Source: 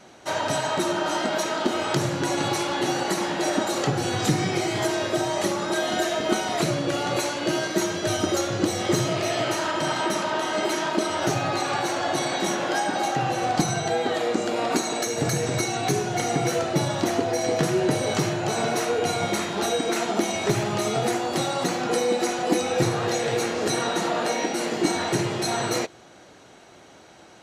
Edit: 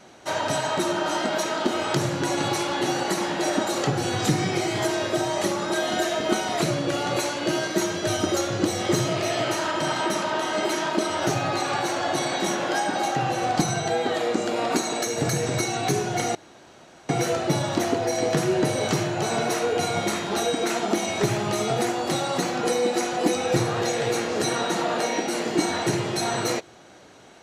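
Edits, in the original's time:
16.35 insert room tone 0.74 s

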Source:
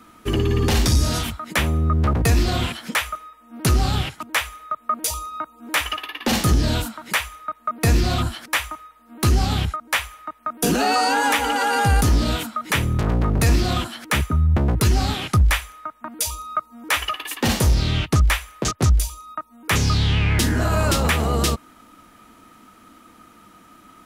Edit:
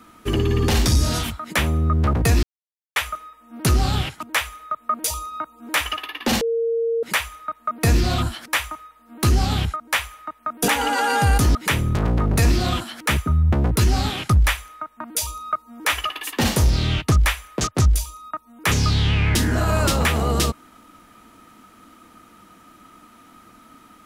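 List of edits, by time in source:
2.43–2.96 mute
6.41–7.03 bleep 460 Hz -18.5 dBFS
10.68–11.31 cut
12.18–12.59 cut

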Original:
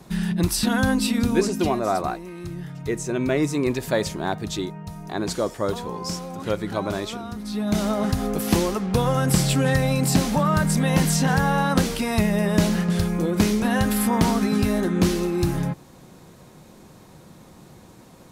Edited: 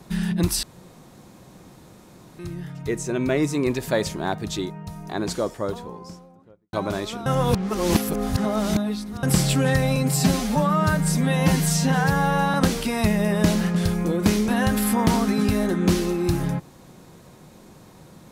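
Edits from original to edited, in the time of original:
0.63–2.39 room tone
5.17–6.73 studio fade out
7.26–9.23 reverse
9.96–11.68 stretch 1.5×

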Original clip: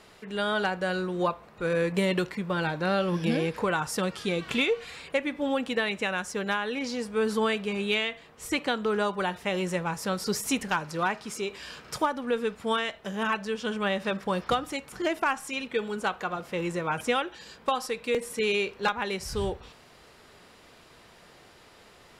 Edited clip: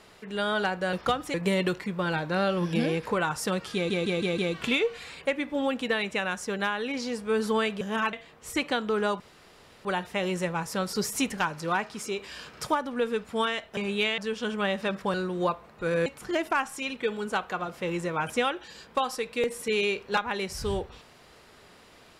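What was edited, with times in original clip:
0.93–1.85 swap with 14.36–14.77
4.25 stutter 0.16 s, 5 plays
7.68–8.09 swap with 13.08–13.4
9.16 insert room tone 0.65 s

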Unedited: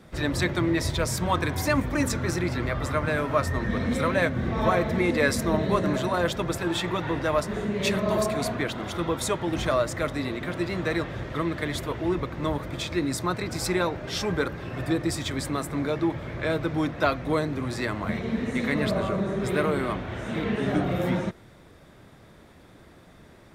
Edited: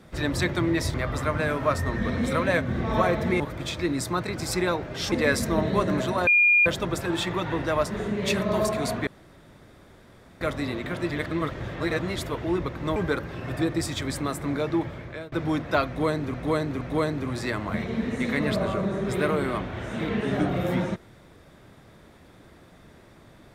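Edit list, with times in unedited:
0.94–2.62 cut
6.23 add tone 2420 Hz -15 dBFS 0.39 s
8.64–9.98 room tone
10.68–11.73 reverse
12.53–14.25 move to 5.08
16.12–16.61 fade out linear, to -24 dB
17.16–17.63 loop, 3 plays

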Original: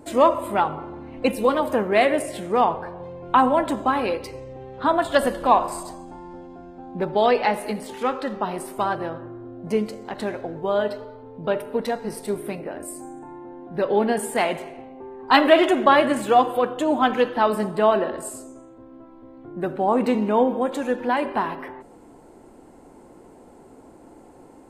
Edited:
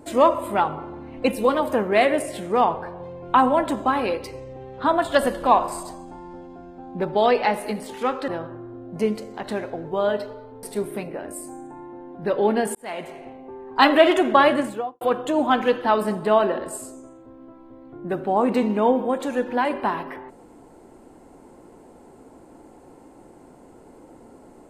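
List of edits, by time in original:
8.28–8.99 cut
11.34–12.15 cut
14.27–14.79 fade in
16.02–16.53 studio fade out

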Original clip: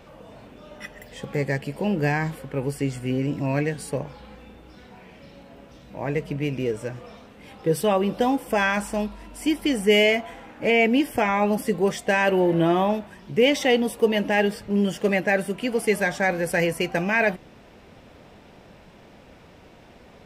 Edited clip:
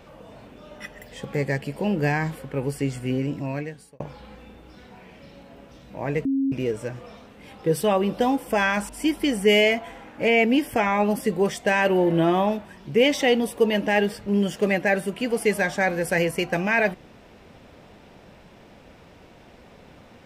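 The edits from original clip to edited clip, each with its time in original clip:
3.14–4 fade out
6.25–6.52 bleep 271 Hz -19.5 dBFS
8.89–9.31 cut

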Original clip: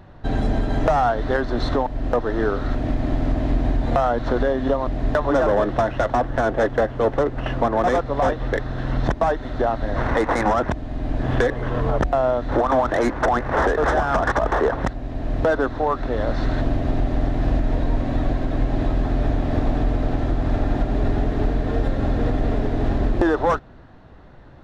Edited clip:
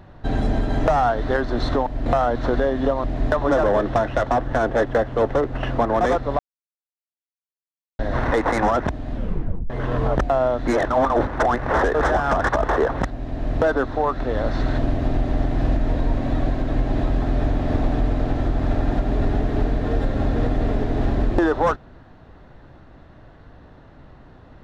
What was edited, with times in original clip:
2.06–3.89 cut
8.22–9.82 mute
10.95 tape stop 0.58 s
12.5–13.1 reverse

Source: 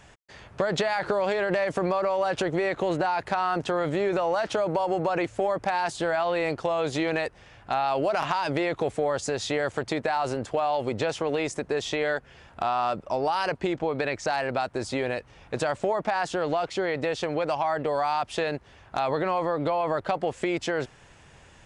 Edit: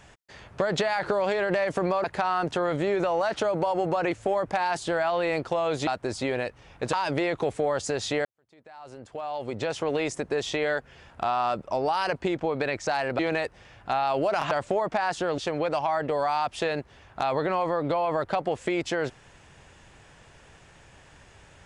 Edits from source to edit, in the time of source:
2.04–3.17 cut
7–8.32 swap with 14.58–15.64
9.64–11.25 fade in quadratic
16.51–17.14 cut

